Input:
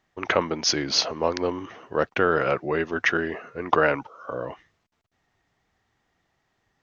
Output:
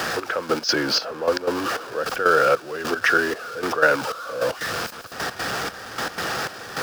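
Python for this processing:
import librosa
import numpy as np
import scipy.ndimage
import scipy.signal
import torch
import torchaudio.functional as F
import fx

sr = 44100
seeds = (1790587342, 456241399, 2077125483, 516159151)

y = x + 0.5 * 10.0 ** (-24.5 / 20.0) * np.sign(x)
y = fx.highpass(y, sr, hz=140.0, slope=6)
y = fx.peak_eq(y, sr, hz=1500.0, db=11.5, octaves=1.1)
y = fx.step_gate(y, sr, bpm=153, pattern='xx...x.x', floor_db=-12.0, edge_ms=4.5)
y = fx.graphic_eq_31(y, sr, hz=(500, 1000, 2000, 5000), db=(8, -5, -11, 8))
y = fx.band_squash(y, sr, depth_pct=40)
y = y * librosa.db_to_amplitude(-1.0)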